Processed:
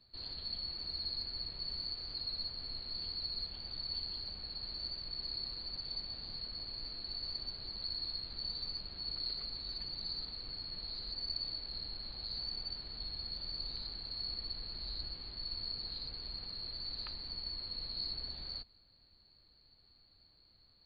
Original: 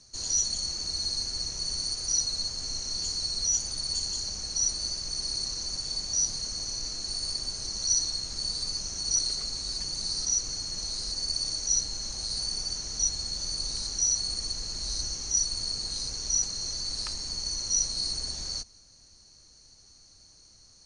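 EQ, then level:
linear-phase brick-wall low-pass 4,800 Hz
−8.0 dB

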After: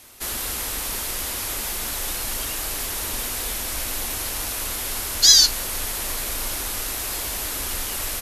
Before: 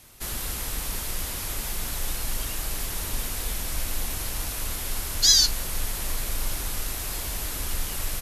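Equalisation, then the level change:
low-shelf EQ 89 Hz −11.5 dB
parametric band 150 Hz −11 dB 0.48 octaves
+5.0 dB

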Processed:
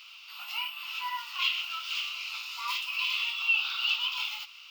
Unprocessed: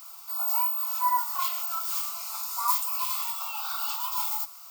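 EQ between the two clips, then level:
high-pass with resonance 2,800 Hz, resonance Q 6.1
high-frequency loss of the air 280 metres
+8.0 dB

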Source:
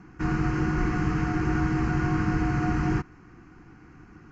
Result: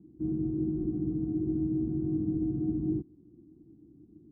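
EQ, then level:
high-pass filter 58 Hz
transistor ladder low-pass 370 Hz, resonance 55%
0.0 dB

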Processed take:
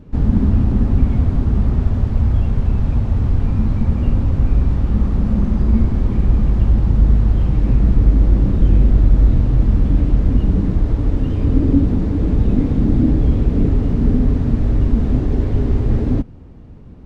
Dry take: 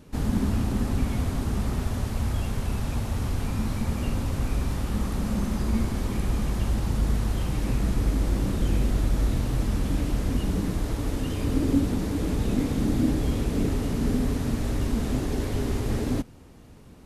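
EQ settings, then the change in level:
head-to-tape spacing loss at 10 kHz 23 dB
low-shelf EQ 120 Hz +4.5 dB
low-shelf EQ 450 Hz +6.5 dB
+2.5 dB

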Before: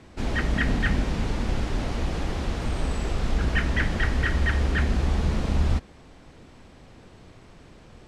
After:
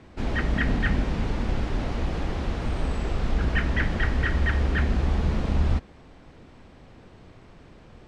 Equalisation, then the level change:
high-shelf EQ 6,200 Hz −12 dB
0.0 dB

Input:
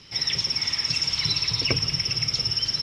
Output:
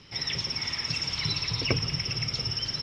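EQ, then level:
high-shelf EQ 4,000 Hz −10 dB
0.0 dB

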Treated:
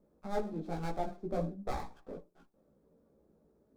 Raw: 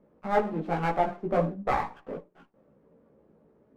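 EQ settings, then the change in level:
octave-band graphic EQ 125/250/500/1,000/2,000 Hz −9/−5/−6/−8/−12 dB
dynamic equaliser 1,100 Hz, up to −5 dB, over −48 dBFS, Q 0.78
parametric band 2,900 Hz −10.5 dB 0.23 octaves
+1.0 dB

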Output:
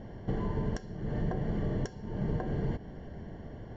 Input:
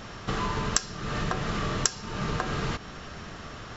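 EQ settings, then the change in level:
moving average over 35 samples
0.0 dB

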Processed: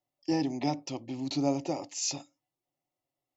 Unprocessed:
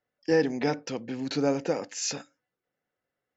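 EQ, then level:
phaser with its sweep stopped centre 310 Hz, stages 8
0.0 dB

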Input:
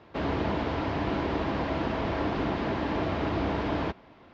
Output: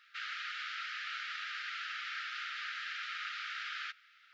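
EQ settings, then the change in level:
linear-phase brick-wall high-pass 1,200 Hz
spectral tilt +1.5 dB per octave
−2.0 dB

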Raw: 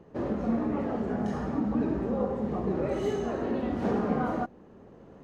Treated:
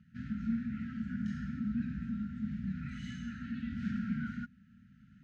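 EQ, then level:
high-pass filter 51 Hz
linear-phase brick-wall band-stop 260–1,300 Hz
high-frequency loss of the air 78 metres
−4.0 dB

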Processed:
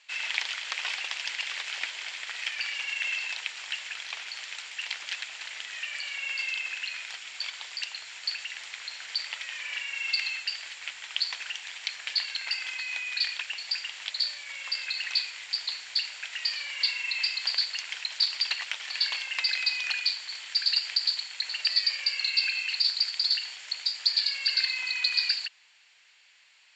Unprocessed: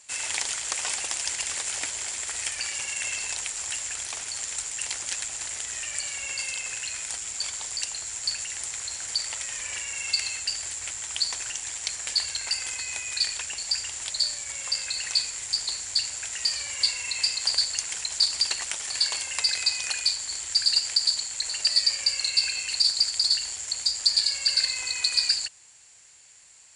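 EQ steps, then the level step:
resonant band-pass 3,000 Hz, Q 1.1
high-frequency loss of the air 200 metres
+7.5 dB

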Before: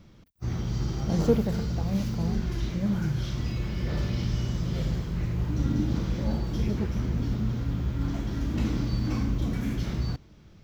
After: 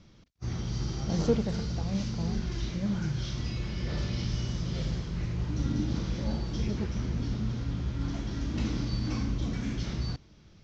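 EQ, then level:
Butterworth low-pass 6,400 Hz 36 dB per octave
high-shelf EQ 3,900 Hz +9.5 dB
−3.5 dB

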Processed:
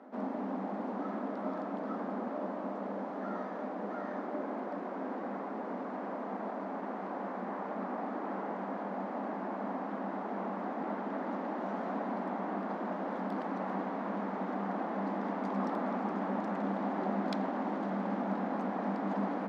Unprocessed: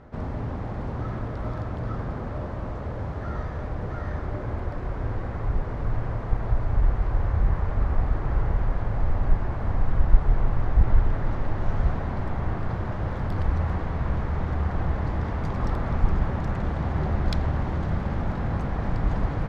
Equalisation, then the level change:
Chebyshev high-pass with heavy ripple 190 Hz, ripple 6 dB
spectral tilt −1.5 dB per octave
0.0 dB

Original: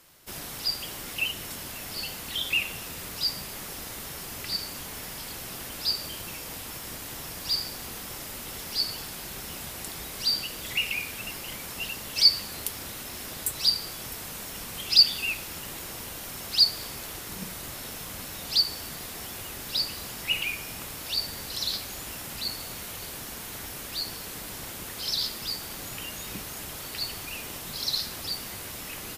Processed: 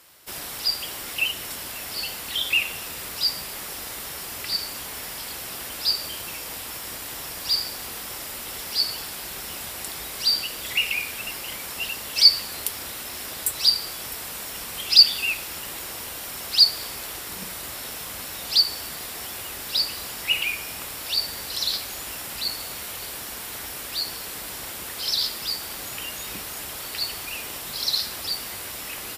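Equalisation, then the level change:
high-pass filter 46 Hz
parametric band 140 Hz −8 dB 2.5 octaves
notch filter 6,400 Hz, Q 16
+4.5 dB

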